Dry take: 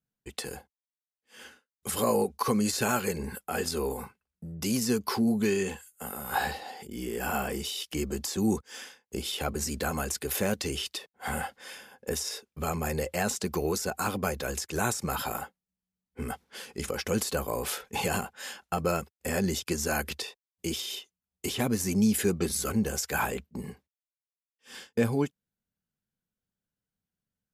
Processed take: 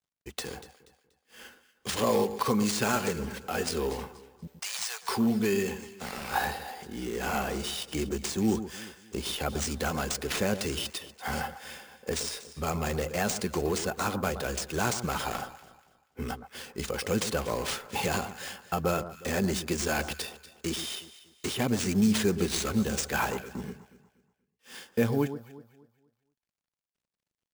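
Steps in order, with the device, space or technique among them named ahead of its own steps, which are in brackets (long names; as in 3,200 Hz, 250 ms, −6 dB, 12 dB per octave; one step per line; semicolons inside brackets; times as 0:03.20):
early companding sampler (sample-rate reduction 14,000 Hz, jitter 0%; log-companded quantiser 8 bits)
0:04.47–0:05.09: Butterworth high-pass 700 Hz 36 dB per octave
delay that swaps between a low-pass and a high-pass 120 ms, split 1,400 Hz, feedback 55%, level −11 dB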